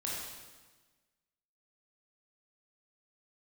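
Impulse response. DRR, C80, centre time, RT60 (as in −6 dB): −5.5 dB, 1.5 dB, 88 ms, 1.3 s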